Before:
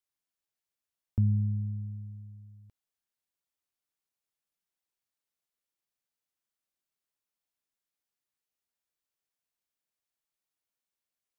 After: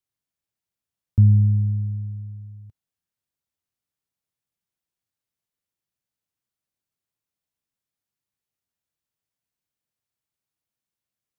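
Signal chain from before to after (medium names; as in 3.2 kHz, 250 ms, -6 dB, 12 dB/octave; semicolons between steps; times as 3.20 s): peaking EQ 110 Hz +12 dB 2.1 oct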